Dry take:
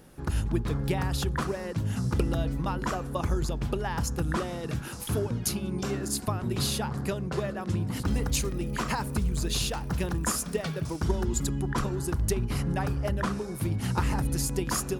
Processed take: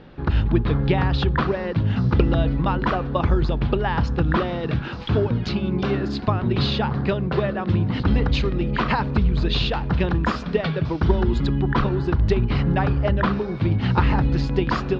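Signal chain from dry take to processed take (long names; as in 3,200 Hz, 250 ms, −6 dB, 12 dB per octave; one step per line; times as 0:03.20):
Butterworth low-pass 4,100 Hz 36 dB per octave
level +8.5 dB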